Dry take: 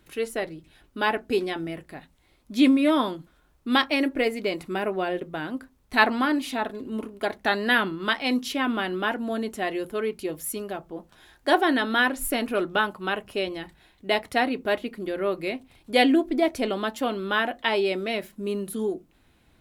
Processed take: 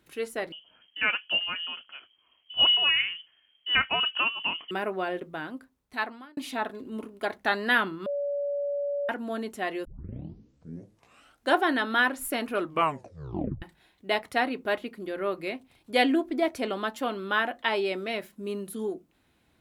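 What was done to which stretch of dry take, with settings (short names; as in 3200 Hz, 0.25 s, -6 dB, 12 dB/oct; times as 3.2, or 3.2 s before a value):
0.52–4.71 inverted band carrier 3200 Hz
5.29–6.37 fade out
8.06–9.09 bleep 571 Hz -23 dBFS
9.85 tape start 1.75 s
12.6 tape stop 1.02 s
whole clip: dynamic EQ 1300 Hz, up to +4 dB, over -37 dBFS, Q 0.93; HPF 95 Hz 6 dB/oct; gain -4.5 dB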